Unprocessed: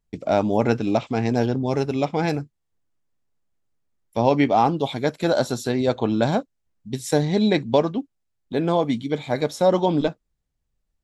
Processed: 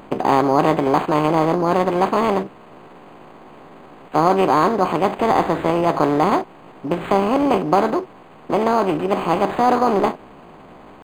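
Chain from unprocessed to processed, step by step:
compressor on every frequency bin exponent 0.4
pitch shifter +5 semitones
linearly interpolated sample-rate reduction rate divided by 8×
level −1.5 dB

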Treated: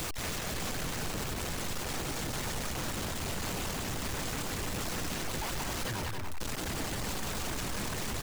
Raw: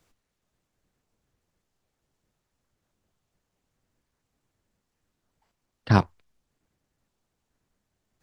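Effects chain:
sign of each sample alone
reverb reduction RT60 0.54 s
loudspeakers that aren't time-aligned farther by 62 metres −4 dB, 95 metres −8 dB

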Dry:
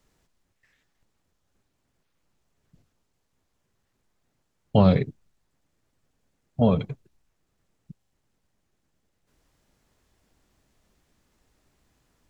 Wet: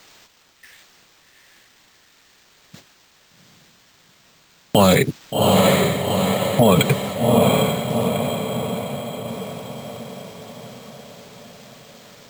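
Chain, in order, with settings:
high-pass filter 93 Hz 24 dB per octave
noise gate −60 dBFS, range −9 dB
spectral tilt +3.5 dB per octave
downward compressor 3 to 1, threshold −30 dBFS, peak gain reduction 8.5 dB
feedback delay with all-pass diffusion 776 ms, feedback 53%, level −5.5 dB
bad sample-rate conversion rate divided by 4×, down none, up hold
boost into a limiter +29.5 dB
level −4 dB

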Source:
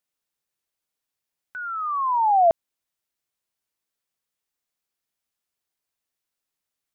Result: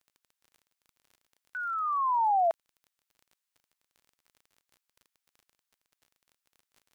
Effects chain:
high-pass filter 990 Hz
surface crackle 29 per second −45 dBFS
level −1.5 dB

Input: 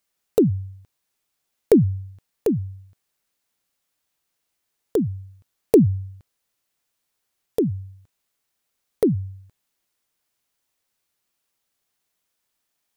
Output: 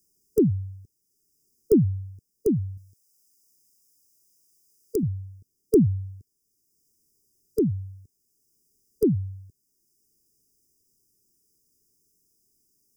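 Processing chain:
0:02.77–0:05.03: tilt shelving filter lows −7 dB, about 830 Hz
linear-phase brick-wall band-stop 460–4,800 Hz
multiband upward and downward compressor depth 40%

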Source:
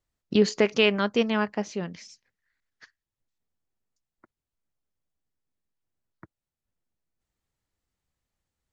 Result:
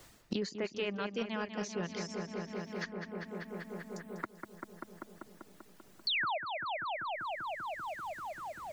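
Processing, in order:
reverb reduction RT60 0.78 s
reversed playback
downward compressor 6 to 1, threshold −32 dBFS, peak gain reduction 16.5 dB
reversed playback
sound drawn into the spectrogram fall, 0:06.07–0:06.38, 560–4,600 Hz −32 dBFS
feedback echo with a low-pass in the loop 195 ms, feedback 73%, low-pass 3,700 Hz, level −8.5 dB
multiband upward and downward compressor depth 100%

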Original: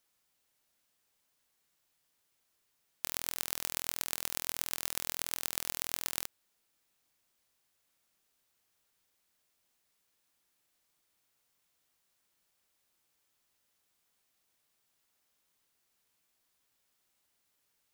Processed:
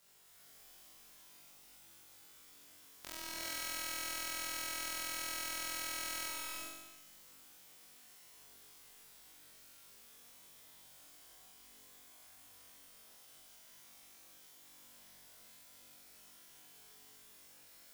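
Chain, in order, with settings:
low-pass filter 4,000 Hz 6 dB per octave
output level in coarse steps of 18 dB
bit-depth reduction 12 bits, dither triangular
on a send: flutter between parallel walls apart 3.6 metres, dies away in 1.1 s
on the sum: reverb whose tail is shaped and stops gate 430 ms rising, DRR −3 dB
level +1 dB

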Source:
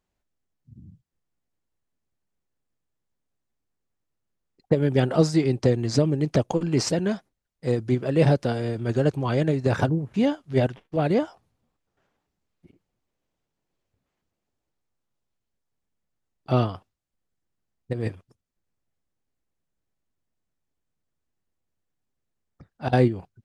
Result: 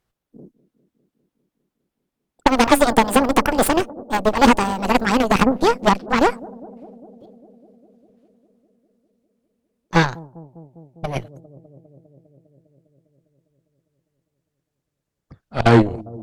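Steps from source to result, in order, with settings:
gliding playback speed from 200% → 89%
bucket-brigade delay 201 ms, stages 1,024, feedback 77%, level −19 dB
harmonic generator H 8 −14 dB, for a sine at −5.5 dBFS
level +5 dB

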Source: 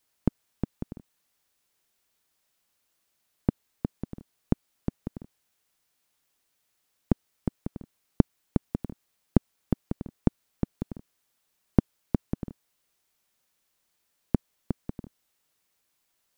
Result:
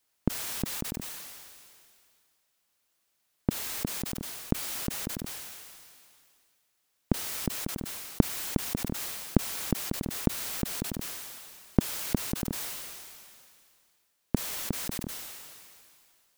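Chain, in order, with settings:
low-shelf EQ 350 Hz −3 dB
level that may fall only so fast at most 26 dB per second

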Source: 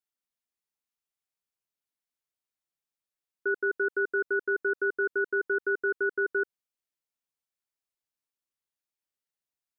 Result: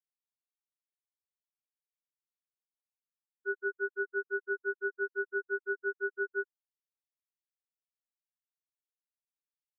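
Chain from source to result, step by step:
every bin expanded away from the loudest bin 4 to 1
level −3.5 dB

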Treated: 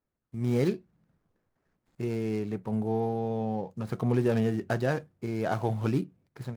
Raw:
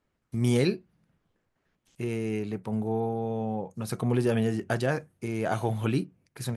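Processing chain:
running median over 15 samples
automatic gain control gain up to 9 dB
level −9 dB

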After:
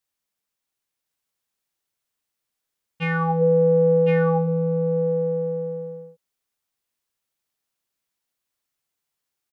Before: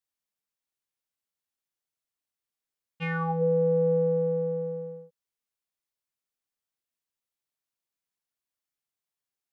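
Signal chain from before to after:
single-tap delay 1,061 ms −4 dB
level +6.5 dB

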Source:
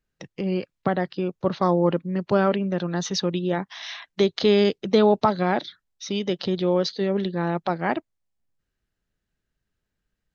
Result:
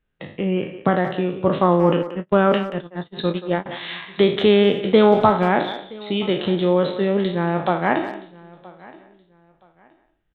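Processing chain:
peak hold with a decay on every bin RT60 0.48 s
on a send: repeating echo 972 ms, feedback 27%, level −22.5 dB
0:02.03–0:03.66: on the sum: noise gate −22 dBFS, range −38 dB
downsampling to 8,000 Hz
far-end echo of a speakerphone 180 ms, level −12 dB
level +3.5 dB

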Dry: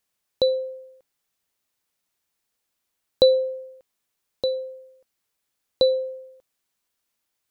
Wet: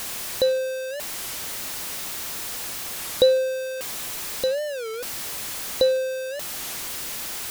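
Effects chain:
converter with a step at zero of −23.5 dBFS
wow of a warped record 33 1/3 rpm, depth 250 cents
level −2 dB

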